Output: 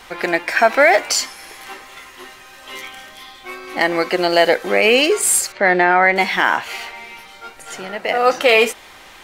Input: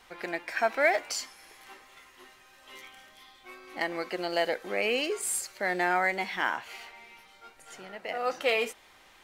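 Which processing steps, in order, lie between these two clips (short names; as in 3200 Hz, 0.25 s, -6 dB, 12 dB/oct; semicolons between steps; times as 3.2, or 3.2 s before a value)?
5.52–6.16 LPF 3000 Hz 12 dB/oct; maximiser +16.5 dB; gain -1 dB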